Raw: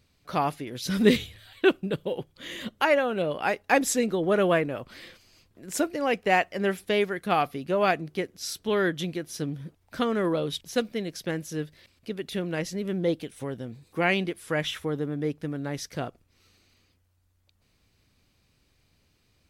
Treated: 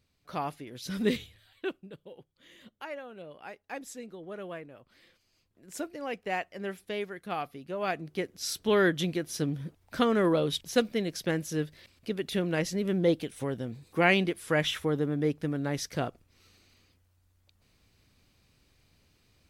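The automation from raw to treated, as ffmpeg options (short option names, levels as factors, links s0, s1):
-af "volume=3.76,afade=t=out:st=1.03:d=0.89:silence=0.298538,afade=t=in:st=4.82:d=1.02:silence=0.398107,afade=t=in:st=7.79:d=0.8:silence=0.281838"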